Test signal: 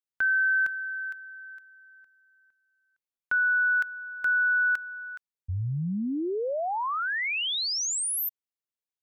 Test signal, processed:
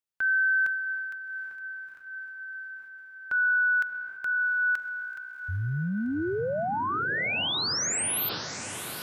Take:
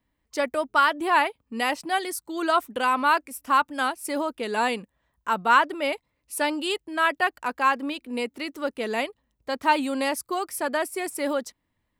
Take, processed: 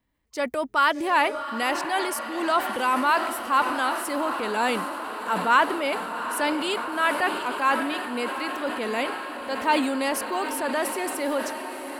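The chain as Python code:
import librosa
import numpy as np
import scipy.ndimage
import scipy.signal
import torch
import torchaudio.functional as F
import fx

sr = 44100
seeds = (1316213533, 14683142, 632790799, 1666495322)

y = fx.echo_diffused(x, sr, ms=753, feedback_pct=75, wet_db=-11)
y = fx.transient(y, sr, attack_db=-3, sustain_db=5)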